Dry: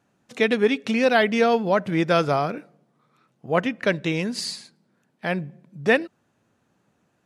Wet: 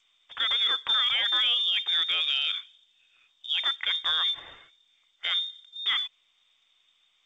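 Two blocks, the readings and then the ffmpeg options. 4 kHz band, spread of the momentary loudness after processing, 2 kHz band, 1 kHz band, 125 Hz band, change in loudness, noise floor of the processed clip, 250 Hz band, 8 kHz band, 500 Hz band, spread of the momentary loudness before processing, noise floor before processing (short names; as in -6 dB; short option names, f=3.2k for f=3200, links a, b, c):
+12.0 dB, 12 LU, -6.5 dB, -12.0 dB, under -30 dB, -2.5 dB, -69 dBFS, under -35 dB, under -10 dB, -31.0 dB, 12 LU, -69 dBFS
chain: -af "lowpass=f=3.2k:t=q:w=0.5098,lowpass=f=3.2k:t=q:w=0.6013,lowpass=f=3.2k:t=q:w=0.9,lowpass=f=3.2k:t=q:w=2.563,afreqshift=-3800,alimiter=limit=-17.5dB:level=0:latency=1:release=11,equalizer=f=200:w=1.8:g=-11" -ar 16000 -c:a g722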